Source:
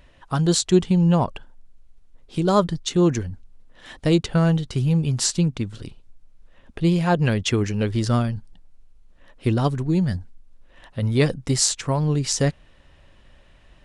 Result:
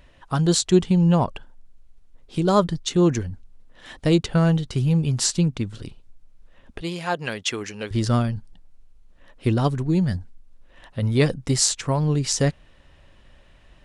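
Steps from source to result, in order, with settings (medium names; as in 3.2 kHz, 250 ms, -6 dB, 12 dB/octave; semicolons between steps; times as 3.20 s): 6.81–7.91 s: high-pass 810 Hz 6 dB/octave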